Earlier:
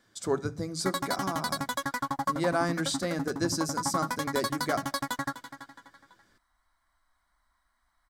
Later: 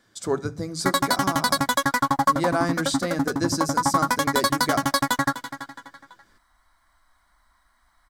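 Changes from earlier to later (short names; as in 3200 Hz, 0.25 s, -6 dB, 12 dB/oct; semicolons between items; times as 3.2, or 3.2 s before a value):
speech +3.5 dB; background +10.0 dB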